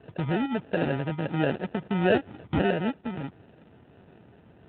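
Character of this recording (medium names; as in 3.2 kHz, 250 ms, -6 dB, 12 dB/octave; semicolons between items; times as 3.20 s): phasing stages 12, 1.5 Hz, lowest notch 550–2100 Hz; aliases and images of a low sample rate 1.1 kHz, jitter 0%; AMR-NB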